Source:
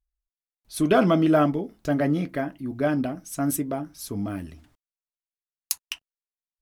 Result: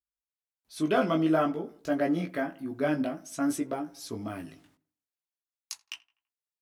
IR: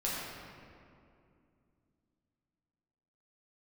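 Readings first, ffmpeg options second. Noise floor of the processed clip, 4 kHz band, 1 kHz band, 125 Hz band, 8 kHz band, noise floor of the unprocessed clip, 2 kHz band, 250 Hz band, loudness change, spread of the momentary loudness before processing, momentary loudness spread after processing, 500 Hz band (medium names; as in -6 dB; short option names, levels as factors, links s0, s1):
under -85 dBFS, -5.0 dB, -4.0 dB, -9.5 dB, -9.0 dB, under -85 dBFS, -3.5 dB, -5.0 dB, -5.0 dB, 16 LU, 18 LU, -5.0 dB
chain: -filter_complex "[0:a]dynaudnorm=f=200:g=5:m=2.51,flanger=delay=17:depth=2.3:speed=0.52,acrossover=split=8300[s0][s1];[s1]acompressor=threshold=0.00398:ratio=4:attack=1:release=60[s2];[s0][s2]amix=inputs=2:normalize=0,highpass=f=260:p=1,asplit=2[s3][s4];[s4]adelay=83,lowpass=f=2200:p=1,volume=0.0891,asplit=2[s5][s6];[s6]adelay=83,lowpass=f=2200:p=1,volume=0.53,asplit=2[s7][s8];[s8]adelay=83,lowpass=f=2200:p=1,volume=0.53,asplit=2[s9][s10];[s10]adelay=83,lowpass=f=2200:p=1,volume=0.53[s11];[s3][s5][s7][s9][s11]amix=inputs=5:normalize=0,volume=0.501"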